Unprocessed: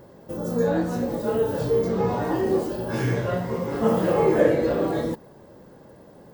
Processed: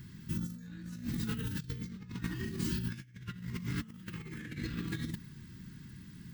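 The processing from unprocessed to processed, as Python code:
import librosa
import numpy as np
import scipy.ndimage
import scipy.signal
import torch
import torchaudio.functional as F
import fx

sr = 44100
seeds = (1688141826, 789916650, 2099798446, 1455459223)

y = scipy.signal.sosfilt(scipy.signal.cheby1(2, 1.0, [170.0, 2200.0], 'bandstop', fs=sr, output='sos'), x)
y = fx.high_shelf(y, sr, hz=12000.0, db=-3.5)
y = fx.over_compress(y, sr, threshold_db=-37.0, ratio=-0.5)
y = F.gain(torch.from_numpy(y), -1.0).numpy()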